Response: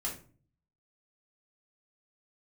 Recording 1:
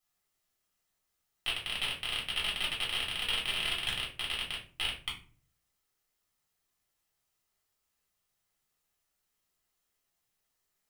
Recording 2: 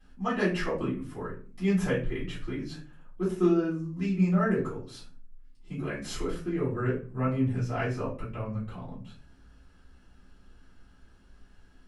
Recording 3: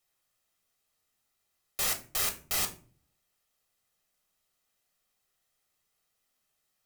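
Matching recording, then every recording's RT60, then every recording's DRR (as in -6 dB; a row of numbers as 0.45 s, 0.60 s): 1; 0.40 s, 0.40 s, 0.45 s; -5.0 dB, -13.5 dB, 4.0 dB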